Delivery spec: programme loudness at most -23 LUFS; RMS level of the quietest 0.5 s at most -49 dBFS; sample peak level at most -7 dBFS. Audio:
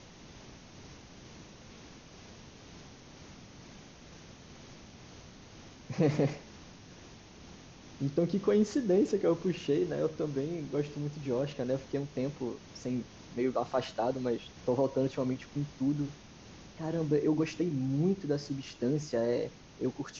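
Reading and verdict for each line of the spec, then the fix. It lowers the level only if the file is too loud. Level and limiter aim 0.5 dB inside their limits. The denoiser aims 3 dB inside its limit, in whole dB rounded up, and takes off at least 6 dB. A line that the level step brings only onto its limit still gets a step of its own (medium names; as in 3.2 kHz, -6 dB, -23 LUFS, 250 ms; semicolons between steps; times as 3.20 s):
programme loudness -32.5 LUFS: pass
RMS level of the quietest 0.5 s -52 dBFS: pass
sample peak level -15.5 dBFS: pass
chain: none needed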